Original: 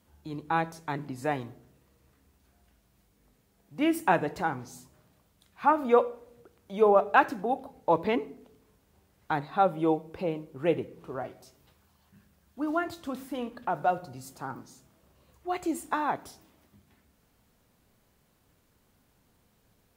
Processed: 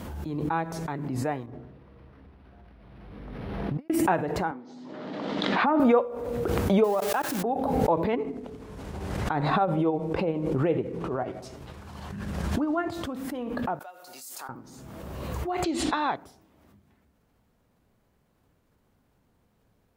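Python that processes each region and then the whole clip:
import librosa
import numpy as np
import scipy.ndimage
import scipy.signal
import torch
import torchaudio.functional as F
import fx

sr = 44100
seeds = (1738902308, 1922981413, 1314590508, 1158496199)

y = fx.chain(x, sr, fx.lowpass(hz=9200.0, slope=12),
    fx.over_compress(threshold_db=-51.0, ratio=-0.5),
    fx.resample_linear(factor=6), at=(1.46, 3.9))
y = fx.chain(y, sr, fx.cabinet(low_hz=230.0, low_slope=24, high_hz=4200.0, hz=(270.0, 390.0, 730.0, 1100.0, 1500.0, 2500.0), db=(4, -3, -3, -5, -4, -6)),
    fx.pre_swell(db_per_s=97.0), at=(4.51, 5.8))
y = fx.chain(y, sr, fx.crossing_spikes(level_db=-20.5),
    fx.level_steps(step_db=24), at=(6.84, 7.43))
y = fx.chain(y, sr, fx.lowpass(hz=9600.0, slope=12),
    fx.tremolo(hz=12.0, depth=0.8),
    fx.env_flatten(amount_pct=50), at=(8.13, 12.93))
y = fx.chain(y, sr, fx.highpass(hz=280.0, slope=12),
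    fx.differentiator(), at=(13.79, 14.49))
y = fx.chain(y, sr, fx.lowpass_res(hz=4000.0, q=3.1),
    fx.high_shelf(hz=2500.0, db=10.5), at=(15.64, 16.16))
y = fx.high_shelf(y, sr, hz=2400.0, db=-10.0)
y = fx.pre_swell(y, sr, db_per_s=25.0)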